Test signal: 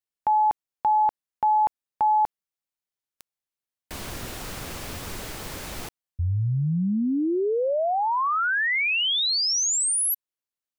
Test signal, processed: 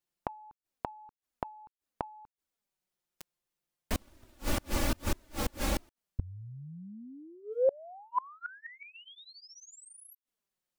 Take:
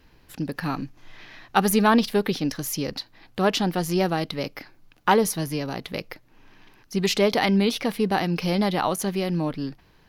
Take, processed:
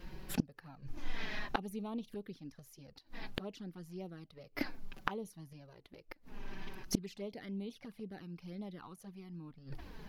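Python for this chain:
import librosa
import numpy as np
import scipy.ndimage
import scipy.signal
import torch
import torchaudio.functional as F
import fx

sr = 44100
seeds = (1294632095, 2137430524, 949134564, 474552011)

y = fx.tilt_shelf(x, sr, db=3.5, hz=690.0)
y = fx.env_flanger(y, sr, rest_ms=5.7, full_db=-15.0)
y = fx.gate_flip(y, sr, shuts_db=-26.0, range_db=-32)
y = y * 10.0 ** (8.5 / 20.0)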